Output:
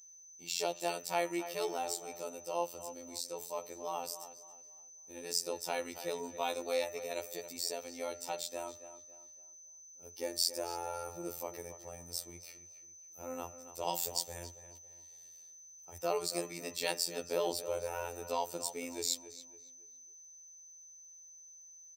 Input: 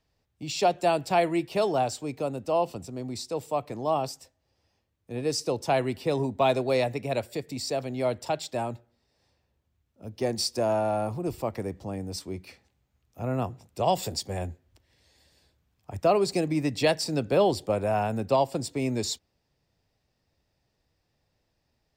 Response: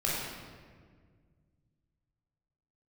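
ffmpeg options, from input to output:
-filter_complex "[0:a]aemphasis=mode=production:type=bsi,aecho=1:1:2.2:0.4,bandreject=f=152:t=h:w=4,bandreject=f=304:t=h:w=4,bandreject=f=456:t=h:w=4,bandreject=f=608:t=h:w=4,bandreject=f=760:t=h:w=4,bandreject=f=912:t=h:w=4,bandreject=f=1064:t=h:w=4,bandreject=f=1216:t=h:w=4,bandreject=f=1368:t=h:w=4,bandreject=f=1520:t=h:w=4,bandreject=f=1672:t=h:w=4,bandreject=f=1824:t=h:w=4,bandreject=f=1976:t=h:w=4,bandreject=f=2128:t=h:w=4,bandreject=f=2280:t=h:w=4,bandreject=f=2432:t=h:w=4,bandreject=f=2584:t=h:w=4,bandreject=f=2736:t=h:w=4,bandreject=f=2888:t=h:w=4,aeval=exprs='val(0)+0.00631*sin(2*PI*6100*n/s)':c=same,afftfilt=real='hypot(re,im)*cos(PI*b)':imag='0':win_size=2048:overlap=0.75,asplit=2[s0][s1];[s1]adelay=277,lowpass=f=3100:p=1,volume=0.251,asplit=2[s2][s3];[s3]adelay=277,lowpass=f=3100:p=1,volume=0.35,asplit=2[s4][s5];[s5]adelay=277,lowpass=f=3100:p=1,volume=0.35,asplit=2[s6][s7];[s7]adelay=277,lowpass=f=3100:p=1,volume=0.35[s8];[s2][s4][s6][s8]amix=inputs=4:normalize=0[s9];[s0][s9]amix=inputs=2:normalize=0,volume=0.447"

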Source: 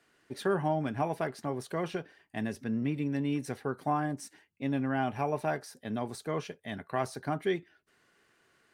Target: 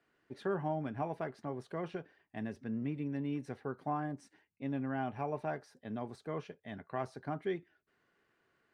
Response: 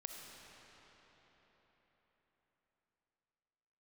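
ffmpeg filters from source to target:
-af "aemphasis=mode=reproduction:type=75fm,volume=0.473"

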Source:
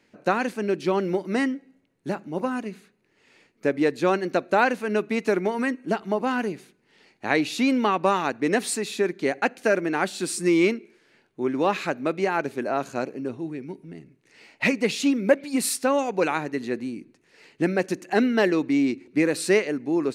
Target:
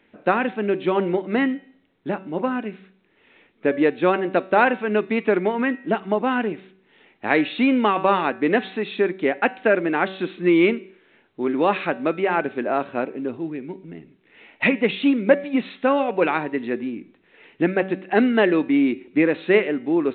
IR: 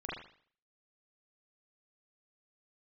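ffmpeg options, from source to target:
-af "equalizer=f=130:w=3.9:g=-8,bandreject=f=190:t=h:w=4,bandreject=f=380:t=h:w=4,bandreject=f=570:t=h:w=4,bandreject=f=760:t=h:w=4,bandreject=f=950:t=h:w=4,bandreject=f=1140:t=h:w=4,bandreject=f=1330:t=h:w=4,bandreject=f=1520:t=h:w=4,bandreject=f=1710:t=h:w=4,bandreject=f=1900:t=h:w=4,bandreject=f=2090:t=h:w=4,bandreject=f=2280:t=h:w=4,bandreject=f=2470:t=h:w=4,bandreject=f=2660:t=h:w=4,bandreject=f=2850:t=h:w=4,bandreject=f=3040:t=h:w=4,bandreject=f=3230:t=h:w=4,bandreject=f=3420:t=h:w=4,bandreject=f=3610:t=h:w=4,bandreject=f=3800:t=h:w=4,bandreject=f=3990:t=h:w=4,bandreject=f=4180:t=h:w=4,bandreject=f=4370:t=h:w=4,bandreject=f=4560:t=h:w=4,bandreject=f=4750:t=h:w=4,bandreject=f=4940:t=h:w=4,bandreject=f=5130:t=h:w=4,bandreject=f=5320:t=h:w=4,bandreject=f=5510:t=h:w=4,bandreject=f=5700:t=h:w=4,bandreject=f=5890:t=h:w=4,bandreject=f=6080:t=h:w=4,bandreject=f=6270:t=h:w=4,bandreject=f=6460:t=h:w=4,bandreject=f=6650:t=h:w=4,bandreject=f=6840:t=h:w=4,bandreject=f=7030:t=h:w=4,volume=1.5" -ar 8000 -c:a pcm_alaw

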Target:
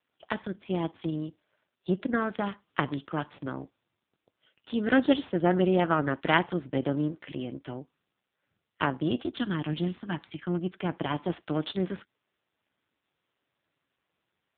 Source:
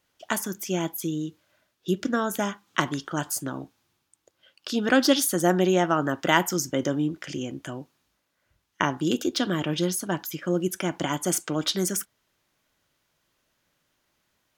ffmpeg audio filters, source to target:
-filter_complex "[0:a]aeval=exprs='if(lt(val(0),0),0.447*val(0),val(0))':c=same,asplit=3[s0][s1][s2];[s0]afade=t=out:st=9.23:d=0.02[s3];[s1]equalizer=f=520:t=o:w=0.6:g=-12.5,afade=t=in:st=9.23:d=0.02,afade=t=out:st=10.79:d=0.02[s4];[s2]afade=t=in:st=10.79:d=0.02[s5];[s3][s4][s5]amix=inputs=3:normalize=0" -ar 8000 -c:a libopencore_amrnb -b:a 5900

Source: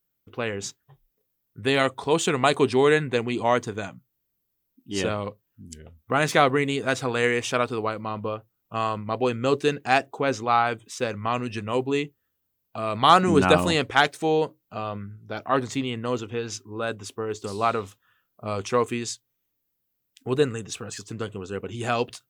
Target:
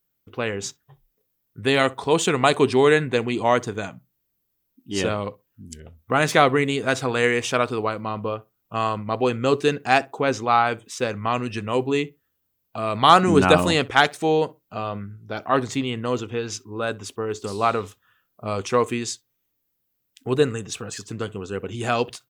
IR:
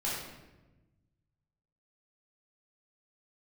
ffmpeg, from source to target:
-filter_complex "[0:a]asplit=2[s0][s1];[s1]adelay=63,lowpass=f=1800:p=1,volume=0.0794,asplit=2[s2][s3];[s3]adelay=63,lowpass=f=1800:p=1,volume=0.16[s4];[s0][s2][s4]amix=inputs=3:normalize=0,volume=1.33"

